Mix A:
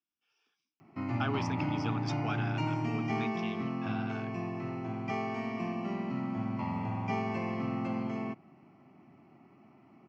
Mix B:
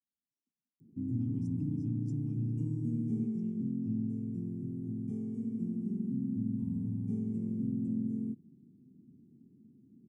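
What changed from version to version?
background: remove phaser with its sweep stopped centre 2,400 Hz, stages 8
master: add elliptic band-stop filter 240–8,700 Hz, stop band 40 dB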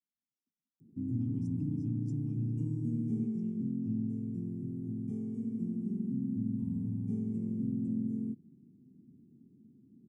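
nothing changed

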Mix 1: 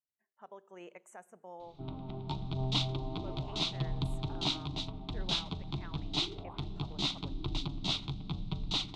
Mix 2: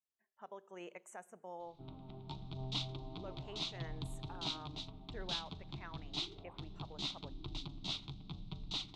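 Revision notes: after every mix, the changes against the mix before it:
background −9.5 dB
master: add parametric band 4,900 Hz +3 dB 1.9 octaves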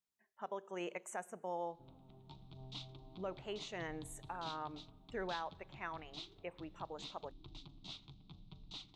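speech +7.0 dB
background −9.5 dB

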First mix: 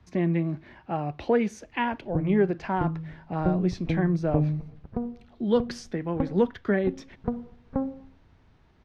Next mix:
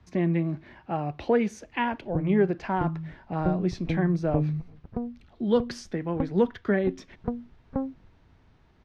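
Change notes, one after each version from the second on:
reverb: off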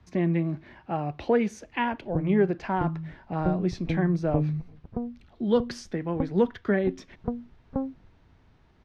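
background: add low-pass filter 1,400 Hz

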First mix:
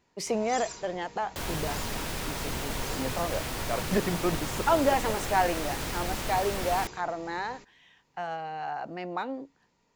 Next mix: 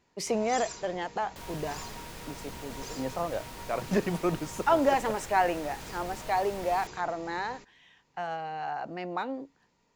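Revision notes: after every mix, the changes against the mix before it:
second sound −10.5 dB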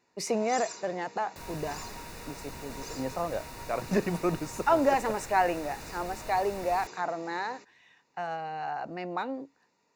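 first sound: add high-pass filter 250 Hz 12 dB per octave
master: add Butterworth band-reject 3,200 Hz, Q 6.4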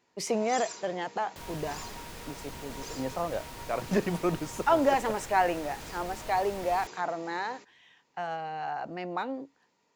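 master: remove Butterworth band-reject 3,200 Hz, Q 6.4

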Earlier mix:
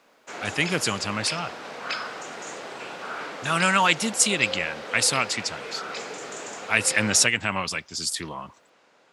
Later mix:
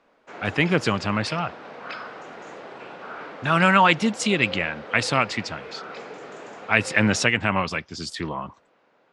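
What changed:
speech +7.0 dB
master: add head-to-tape spacing loss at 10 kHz 25 dB

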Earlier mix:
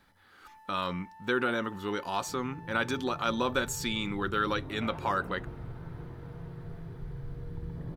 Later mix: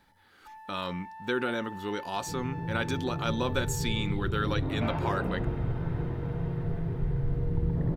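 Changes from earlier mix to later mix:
first sound +9.0 dB
second sound +11.0 dB
master: add parametric band 1,200 Hz −4.5 dB 0.8 octaves

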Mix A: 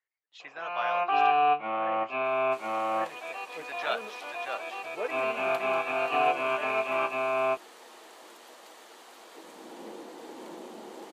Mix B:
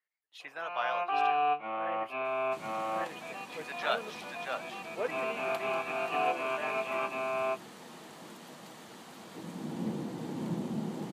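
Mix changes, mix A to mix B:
speech: remove linear-phase brick-wall low-pass 8,000 Hz
first sound −5.0 dB
second sound: remove high-pass filter 360 Hz 24 dB per octave

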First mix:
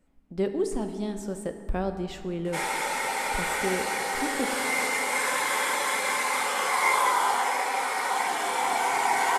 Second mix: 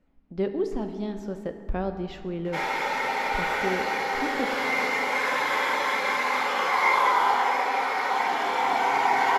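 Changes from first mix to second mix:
background: send +8.0 dB
master: add moving average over 5 samples

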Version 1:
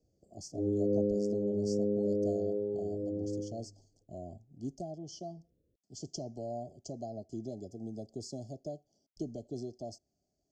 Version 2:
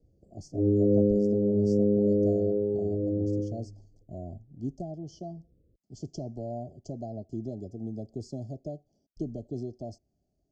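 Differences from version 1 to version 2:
background +3.0 dB
master: add spectral tilt −2.5 dB per octave

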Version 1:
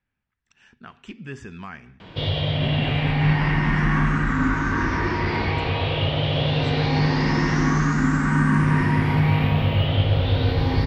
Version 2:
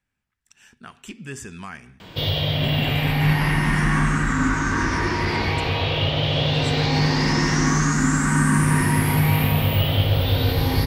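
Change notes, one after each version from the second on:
master: remove high-frequency loss of the air 180 metres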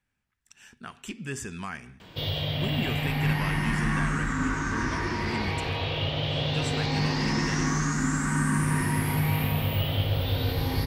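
background −7.0 dB

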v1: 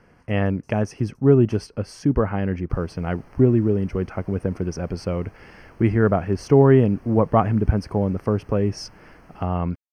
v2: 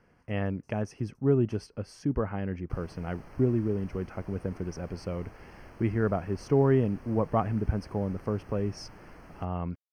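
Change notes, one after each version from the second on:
speech −9.0 dB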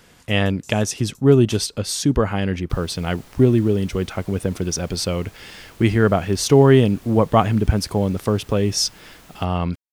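speech +10.5 dB
master: remove moving average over 12 samples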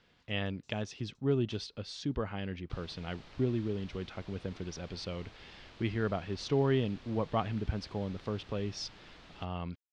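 speech −9.5 dB
master: add transistor ladder low-pass 5,000 Hz, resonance 30%

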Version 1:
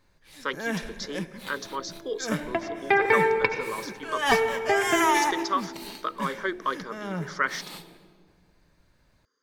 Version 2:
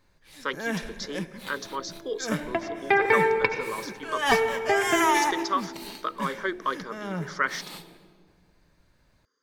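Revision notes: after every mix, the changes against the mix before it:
nothing changed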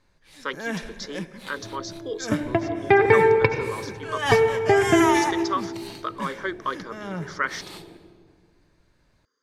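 first sound: add low-pass filter 11,000 Hz 12 dB per octave
second sound: remove high-pass filter 850 Hz 6 dB per octave

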